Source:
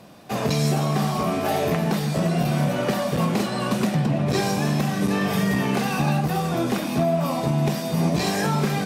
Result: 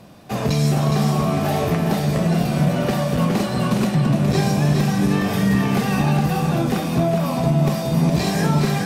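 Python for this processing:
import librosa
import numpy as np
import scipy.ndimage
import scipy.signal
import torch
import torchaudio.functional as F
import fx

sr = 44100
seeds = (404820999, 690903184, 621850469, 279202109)

y = fx.low_shelf(x, sr, hz=120.0, db=10.5)
y = y + 10.0 ** (-5.5 / 20.0) * np.pad(y, (int(414 * sr / 1000.0), 0))[:len(y)]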